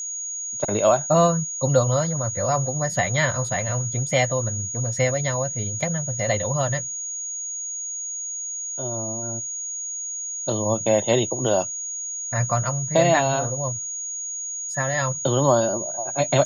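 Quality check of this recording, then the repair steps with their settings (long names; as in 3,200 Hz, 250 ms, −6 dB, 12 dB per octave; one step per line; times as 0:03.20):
whistle 6,700 Hz −28 dBFS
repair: notch filter 6,700 Hz, Q 30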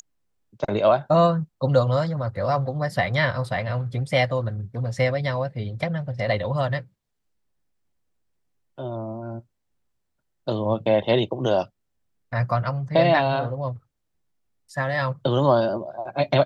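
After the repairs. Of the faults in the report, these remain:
none of them is left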